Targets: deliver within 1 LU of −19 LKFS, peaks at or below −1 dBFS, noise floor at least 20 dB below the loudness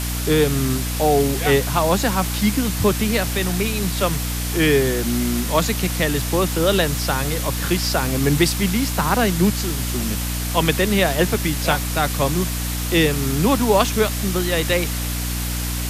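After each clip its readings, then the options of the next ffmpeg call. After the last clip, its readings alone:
mains hum 60 Hz; hum harmonics up to 300 Hz; level of the hum −23 dBFS; background noise floor −24 dBFS; target noise floor −40 dBFS; integrated loudness −19.5 LKFS; sample peak −3.0 dBFS; target loudness −19.0 LKFS
→ -af "bandreject=frequency=60:width_type=h:width=4,bandreject=frequency=120:width_type=h:width=4,bandreject=frequency=180:width_type=h:width=4,bandreject=frequency=240:width_type=h:width=4,bandreject=frequency=300:width_type=h:width=4"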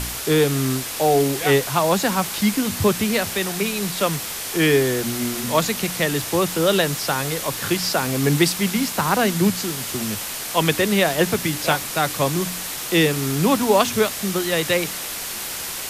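mains hum none found; background noise floor −30 dBFS; target noise floor −41 dBFS
→ -af "afftdn=noise_reduction=11:noise_floor=-30"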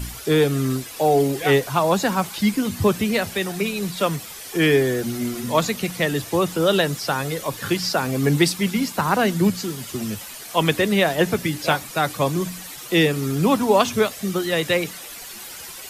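background noise floor −37 dBFS; target noise floor −42 dBFS
→ -af "afftdn=noise_reduction=6:noise_floor=-37"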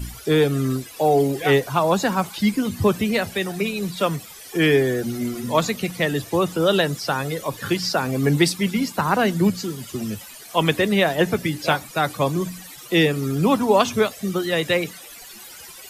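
background noise floor −41 dBFS; target noise floor −42 dBFS
→ -af "afftdn=noise_reduction=6:noise_floor=-41"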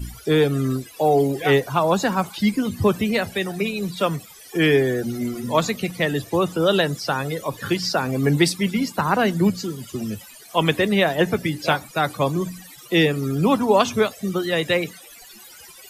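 background noise floor −44 dBFS; integrated loudness −21.5 LKFS; sample peak −4.0 dBFS; target loudness −19.0 LKFS
→ -af "volume=2.5dB"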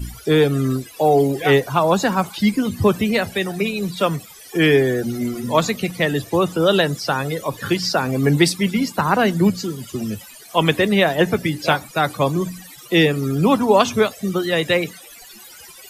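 integrated loudness −19.0 LKFS; sample peak −1.5 dBFS; background noise floor −42 dBFS

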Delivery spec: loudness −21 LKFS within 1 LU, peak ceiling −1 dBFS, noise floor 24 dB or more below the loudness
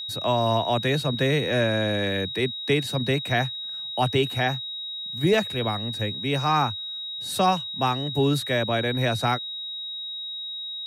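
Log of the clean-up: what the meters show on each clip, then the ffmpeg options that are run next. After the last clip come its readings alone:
interfering tone 3,800 Hz; level of the tone −31 dBFS; integrated loudness −25.0 LKFS; sample peak −10.5 dBFS; target loudness −21.0 LKFS
→ -af "bandreject=frequency=3800:width=30"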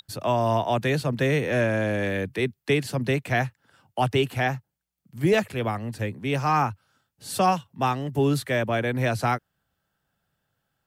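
interfering tone none found; integrated loudness −25.0 LKFS; sample peak −11.5 dBFS; target loudness −21.0 LKFS
→ -af "volume=4dB"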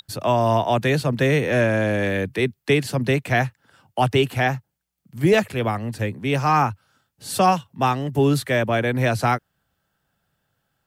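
integrated loudness −21.0 LKFS; sample peak −7.5 dBFS; background noise floor −76 dBFS

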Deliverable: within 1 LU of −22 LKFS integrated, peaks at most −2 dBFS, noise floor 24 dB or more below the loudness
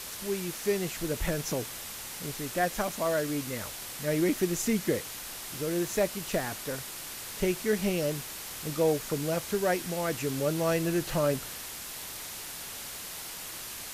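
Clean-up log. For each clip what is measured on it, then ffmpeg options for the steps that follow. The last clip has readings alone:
background noise floor −41 dBFS; target noise floor −56 dBFS; integrated loudness −31.5 LKFS; sample peak −15.0 dBFS; target loudness −22.0 LKFS
→ -af "afftdn=noise_reduction=15:noise_floor=-41"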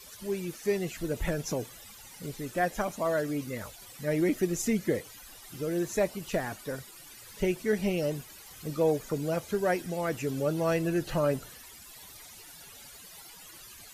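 background noise floor −50 dBFS; target noise floor −55 dBFS
→ -af "afftdn=noise_reduction=6:noise_floor=-50"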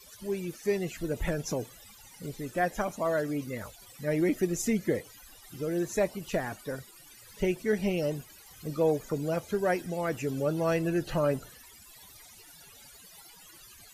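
background noise floor −53 dBFS; target noise floor −55 dBFS
→ -af "afftdn=noise_reduction=6:noise_floor=-53"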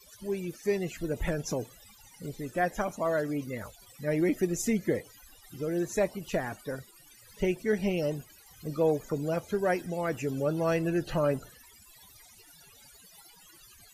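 background noise floor −56 dBFS; integrated loudness −31.0 LKFS; sample peak −15.5 dBFS; target loudness −22.0 LKFS
→ -af "volume=9dB"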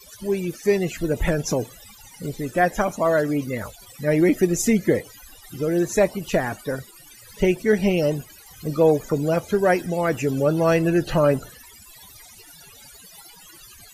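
integrated loudness −22.0 LKFS; sample peak −6.5 dBFS; background noise floor −47 dBFS

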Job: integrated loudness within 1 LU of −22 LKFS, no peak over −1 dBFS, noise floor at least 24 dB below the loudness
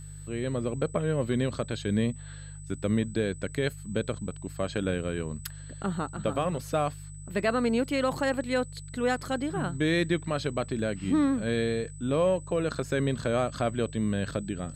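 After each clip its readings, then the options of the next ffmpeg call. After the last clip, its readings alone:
mains hum 50 Hz; hum harmonics up to 150 Hz; level of the hum −40 dBFS; interfering tone 8,000 Hz; level of the tone −49 dBFS; integrated loudness −29.5 LKFS; sample peak −14.5 dBFS; target loudness −22.0 LKFS
→ -af "bandreject=frequency=50:width_type=h:width=4,bandreject=frequency=100:width_type=h:width=4,bandreject=frequency=150:width_type=h:width=4"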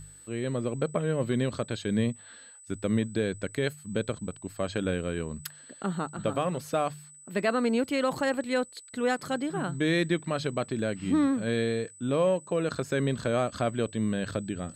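mains hum none found; interfering tone 8,000 Hz; level of the tone −49 dBFS
→ -af "bandreject=frequency=8000:width=30"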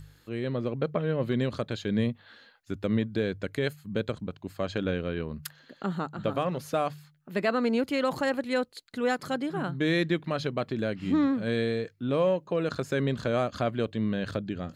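interfering tone none found; integrated loudness −29.5 LKFS; sample peak −15.0 dBFS; target loudness −22.0 LKFS
→ -af "volume=7.5dB"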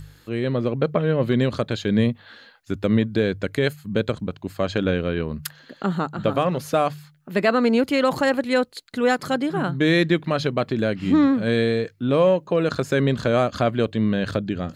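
integrated loudness −22.0 LKFS; sample peak −7.5 dBFS; background noise floor −53 dBFS

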